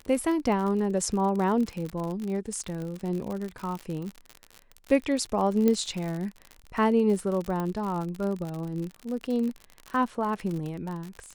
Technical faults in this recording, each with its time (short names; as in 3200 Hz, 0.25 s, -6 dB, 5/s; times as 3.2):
crackle 63/s -31 dBFS
5.68 pop -12 dBFS
7.6 pop -19 dBFS